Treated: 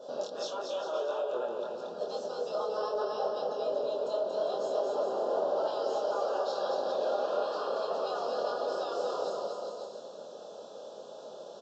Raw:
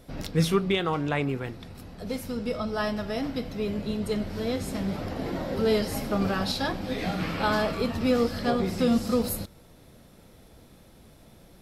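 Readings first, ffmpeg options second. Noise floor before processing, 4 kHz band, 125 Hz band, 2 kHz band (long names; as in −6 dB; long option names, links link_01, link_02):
−54 dBFS, −8.5 dB, below −30 dB, −13.5 dB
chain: -filter_complex "[0:a]afftfilt=real='re*lt(hypot(re,im),0.141)':imag='im*lt(hypot(re,im),0.141)':win_size=1024:overlap=0.75,aecho=1:1:4.9:0.34,asplit=2[link_01][link_02];[link_02]acompressor=threshold=-44dB:ratio=10,volume=2dB[link_03];[link_01][link_03]amix=inputs=2:normalize=0,alimiter=limit=-22.5dB:level=0:latency=1:release=176,flanger=delay=22.5:depth=3.7:speed=1.6,highpass=frequency=530:width_type=q:width=4,asplit=2[link_04][link_05];[link_05]aecho=0:1:230|402.5|531.9|628.9|701.7:0.631|0.398|0.251|0.158|0.1[link_06];[link_04][link_06]amix=inputs=2:normalize=0,aresample=16000,aresample=44100,asuperstop=centerf=2100:order=4:qfactor=1.2,adynamicequalizer=threshold=0.00447:dfrequency=1800:dqfactor=0.7:tfrequency=1800:tqfactor=0.7:attack=5:release=100:ratio=0.375:range=4:mode=cutabove:tftype=highshelf"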